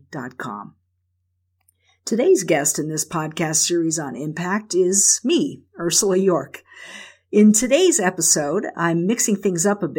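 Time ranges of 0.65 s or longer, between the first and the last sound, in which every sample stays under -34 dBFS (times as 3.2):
0.68–2.07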